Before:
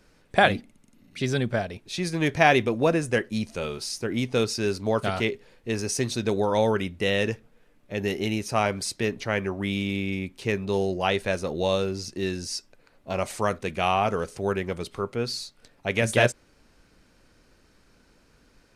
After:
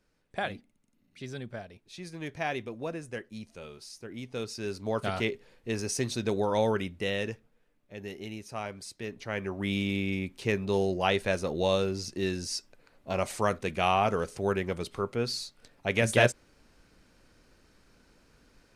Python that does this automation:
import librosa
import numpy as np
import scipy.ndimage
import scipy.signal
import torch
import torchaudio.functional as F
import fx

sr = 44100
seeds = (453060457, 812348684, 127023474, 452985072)

y = fx.gain(x, sr, db=fx.line((4.18, -14.0), (5.14, -4.0), (6.75, -4.0), (7.95, -13.0), (8.95, -13.0), (9.73, -2.0)))